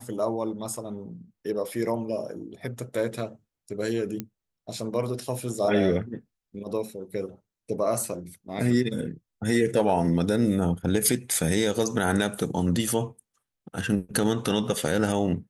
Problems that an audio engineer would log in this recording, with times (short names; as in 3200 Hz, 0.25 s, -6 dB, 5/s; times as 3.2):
4.2 pop -16 dBFS